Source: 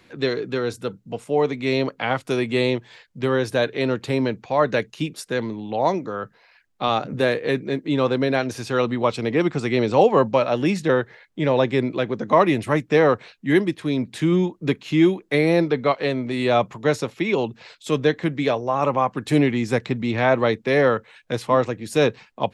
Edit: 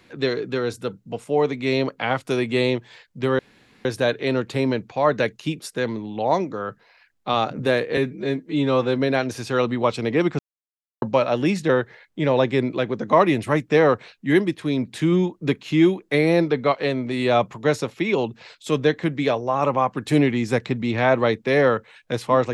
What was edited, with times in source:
3.39 insert room tone 0.46 s
7.51–8.19 stretch 1.5×
9.59–10.22 mute

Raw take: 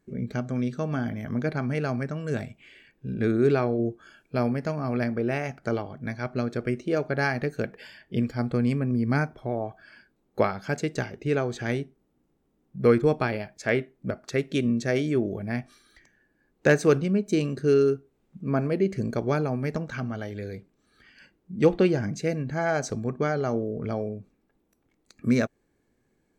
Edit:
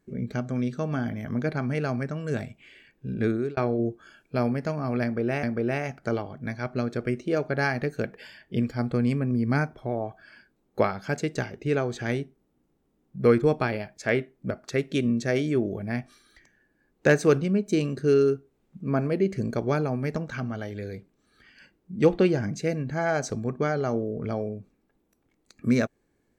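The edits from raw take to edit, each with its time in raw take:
3.26–3.57 fade out
5.03–5.43 loop, 2 plays

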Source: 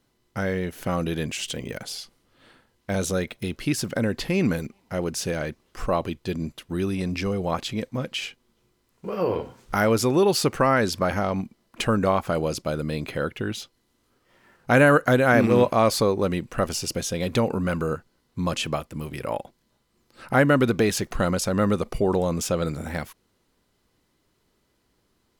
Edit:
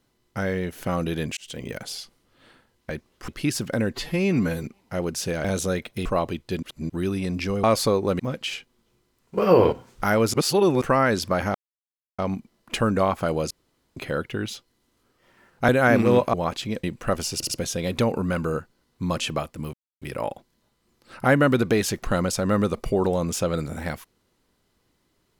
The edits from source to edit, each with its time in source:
1.37–1.65 fade in
2.9–3.51 swap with 5.44–5.82
4.16–4.63 stretch 1.5×
6.39–6.66 reverse
7.4–7.9 swap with 15.78–16.34
9.08–9.43 gain +8.5 dB
10.04–10.52 reverse
11.25 insert silence 0.64 s
12.57–13.03 room tone
14.75–15.13 cut
16.86 stutter 0.07 s, 3 plays
19.1 insert silence 0.28 s

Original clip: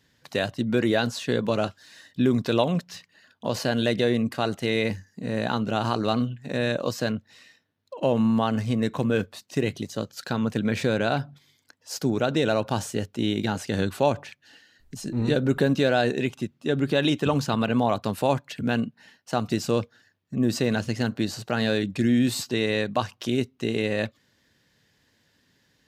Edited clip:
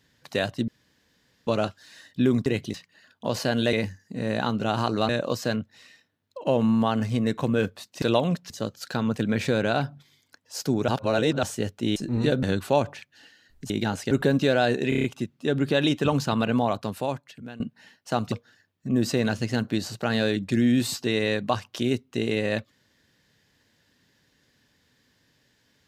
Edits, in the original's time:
0.68–1.47 room tone
2.46–2.94 swap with 9.58–9.86
3.93–4.8 cut
6.16–6.65 cut
12.24–12.79 reverse
13.32–13.73 swap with 15–15.47
16.25 stutter 0.03 s, 6 plays
17.7–18.81 fade out linear, to -21 dB
19.53–19.79 cut

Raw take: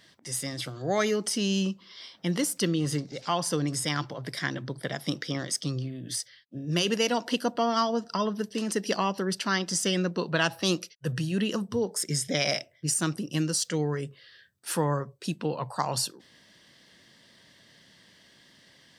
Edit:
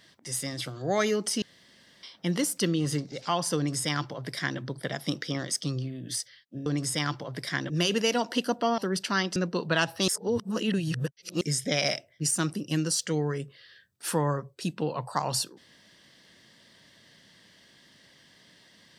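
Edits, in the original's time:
1.42–2.03 room tone
3.56–4.6 copy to 6.66
7.74–9.14 cut
9.72–9.99 cut
10.71–12.04 reverse

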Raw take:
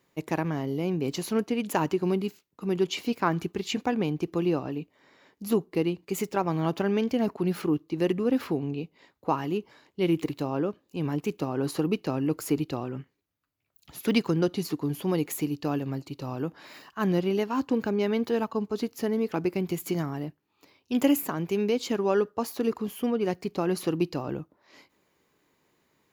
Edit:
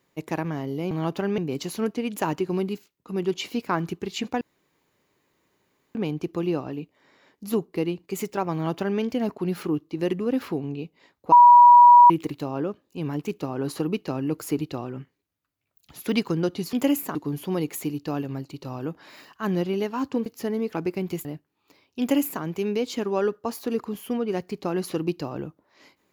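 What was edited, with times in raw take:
3.94 insert room tone 1.54 s
6.52–6.99 copy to 0.91
9.31–10.09 bleep 967 Hz -7.5 dBFS
17.83–18.85 cut
19.84–20.18 cut
20.93–21.35 copy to 14.72

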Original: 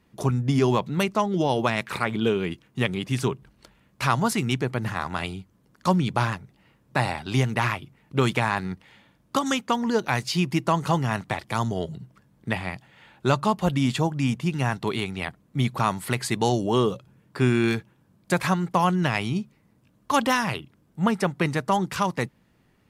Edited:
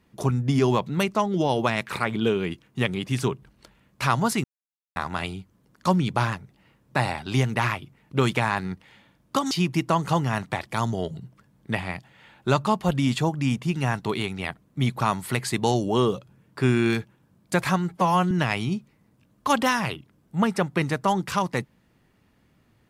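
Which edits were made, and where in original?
4.44–4.96 mute
9.51–10.29 cut
18.67–18.95 stretch 1.5×

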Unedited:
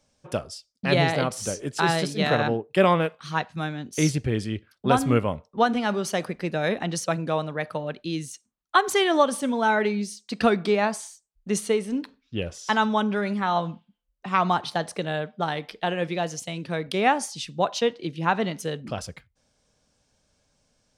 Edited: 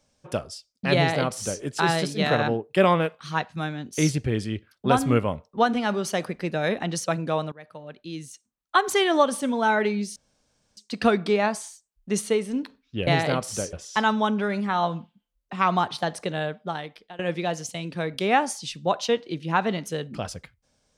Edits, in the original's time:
0.96–1.62 copy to 12.46
7.52–8.92 fade in, from -19.5 dB
10.16 insert room tone 0.61 s
15.17–15.92 fade out, to -22.5 dB

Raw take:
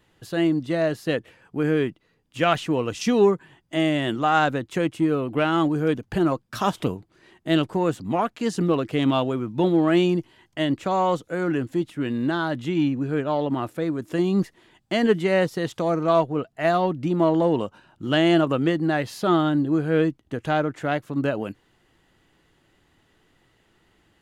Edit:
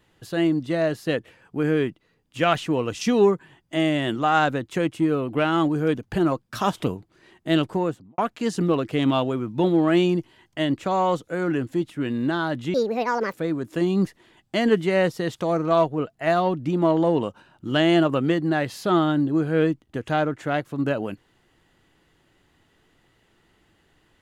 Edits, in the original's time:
7.72–8.18 studio fade out
12.74–13.71 speed 163%

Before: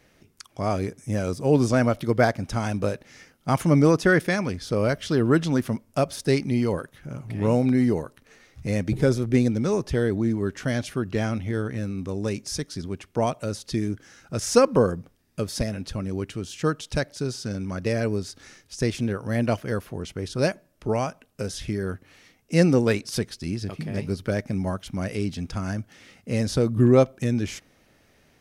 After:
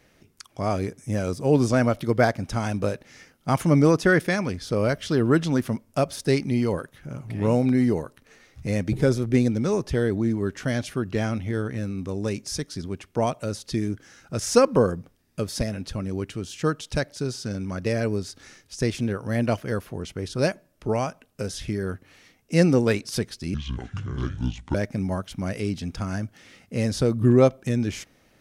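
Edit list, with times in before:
23.54–24.3 speed 63%

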